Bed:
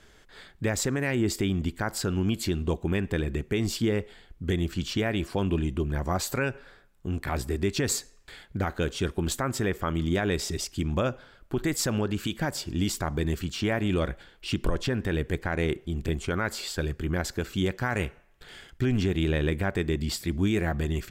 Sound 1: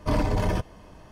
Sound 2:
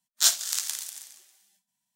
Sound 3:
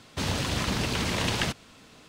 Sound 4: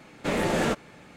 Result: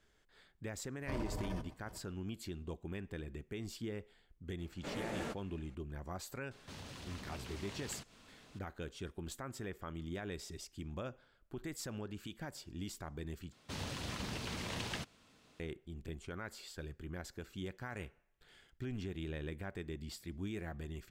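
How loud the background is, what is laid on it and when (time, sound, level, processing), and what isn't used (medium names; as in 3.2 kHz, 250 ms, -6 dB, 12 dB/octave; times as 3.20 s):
bed -16.5 dB
1.01 s: add 1 -17 dB + chunks repeated in reverse 243 ms, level -13 dB
4.59 s: add 4 -16.5 dB
6.51 s: add 3 -8.5 dB + compression 2:1, threshold -48 dBFS
13.52 s: replace with 3 -13.5 dB
not used: 2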